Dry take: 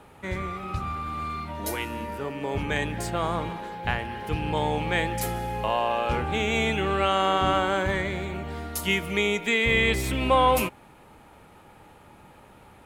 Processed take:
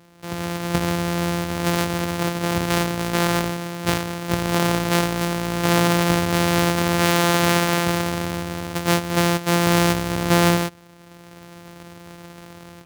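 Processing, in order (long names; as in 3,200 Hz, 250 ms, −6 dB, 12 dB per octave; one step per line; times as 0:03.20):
samples sorted by size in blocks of 256 samples
high-pass filter 92 Hz 12 dB per octave
automatic gain control
level −1 dB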